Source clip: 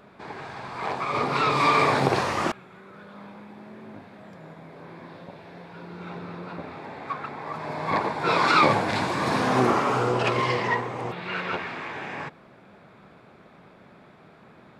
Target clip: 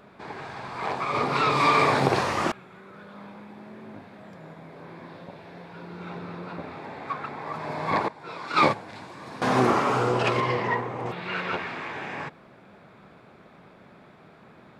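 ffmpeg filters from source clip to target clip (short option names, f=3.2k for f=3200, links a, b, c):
-filter_complex "[0:a]asettb=1/sr,asplit=3[a][b][c];[a]atrim=end=8.084[d];[b]atrim=start=8.08:end=9.42,asetpts=PTS-STARTPTS,afade=t=in:d=0.004:c=qsin,afade=t=out:st=1.336:d=0.004:c=qsin,agate=range=-16dB:threshold=-17dB:ratio=16:detection=peak[e];[c]atrim=start=9.416[f];[d][e]acrossfade=d=0.004:c1=hsin:c2=qsin[g];[g][f]acrossfade=d=0.004:c1=qsin:c2=hsin,asettb=1/sr,asplit=3[h][i][j];[h]atrim=end=10.404[k];[i]atrim=start=10.4:end=11.06,asetpts=PTS-STARTPTS,afade=t=in:d=0.004:c=qsin,afade=t=out:st=0.656:d=0.004:c=qsin,highshelf=f=3.3k:g=-10[l];[j]atrim=start=11.056[m];[k][l]acrossfade=d=0.004:c1=hsin:c2=qsin[n];[n][m]acrossfade=d=0.004:c1=qsin:c2=hsin"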